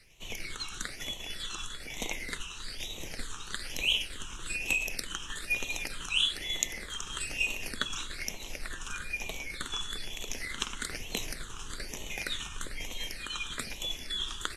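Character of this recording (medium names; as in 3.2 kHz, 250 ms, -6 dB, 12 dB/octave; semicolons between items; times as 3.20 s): tremolo saw down 10 Hz, depth 40%; phasing stages 8, 1.1 Hz, lowest notch 600–1500 Hz; a quantiser's noise floor 12-bit, dither none; AAC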